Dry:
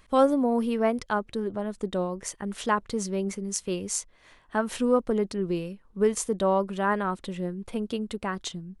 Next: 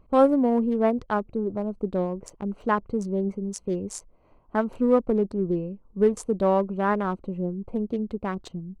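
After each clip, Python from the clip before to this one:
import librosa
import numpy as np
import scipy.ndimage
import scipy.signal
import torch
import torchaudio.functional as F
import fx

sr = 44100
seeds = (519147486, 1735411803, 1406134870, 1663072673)

y = fx.wiener(x, sr, points=25)
y = fx.high_shelf(y, sr, hz=2000.0, db=-9.5)
y = y * librosa.db_to_amplitude(3.5)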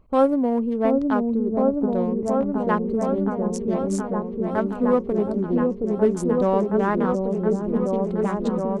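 y = fx.echo_opening(x, sr, ms=721, hz=400, octaves=1, feedback_pct=70, wet_db=0)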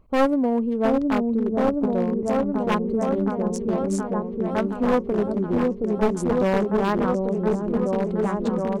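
y = np.minimum(x, 2.0 * 10.0 ** (-18.0 / 20.0) - x)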